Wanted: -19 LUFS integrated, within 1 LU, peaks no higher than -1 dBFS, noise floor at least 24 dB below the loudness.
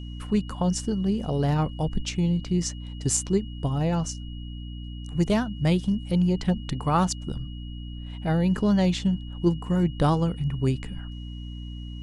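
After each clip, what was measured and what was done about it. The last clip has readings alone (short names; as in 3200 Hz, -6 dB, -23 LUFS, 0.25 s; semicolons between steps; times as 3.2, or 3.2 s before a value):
hum 60 Hz; harmonics up to 300 Hz; hum level -34 dBFS; steady tone 2900 Hz; tone level -48 dBFS; loudness -25.5 LUFS; peak -9.5 dBFS; loudness target -19.0 LUFS
-> notches 60/120/180/240/300 Hz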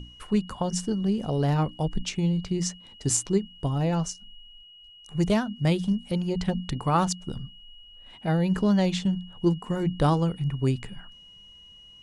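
hum none; steady tone 2900 Hz; tone level -48 dBFS
-> notch 2900 Hz, Q 30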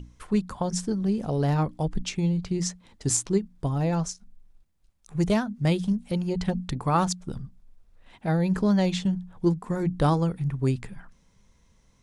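steady tone none; loudness -26.5 LUFS; peak -9.5 dBFS; loudness target -19.0 LUFS
-> gain +7.5 dB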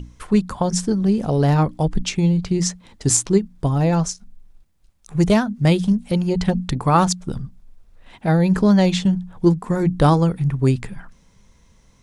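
loudness -19.0 LUFS; peak -2.0 dBFS; noise floor -55 dBFS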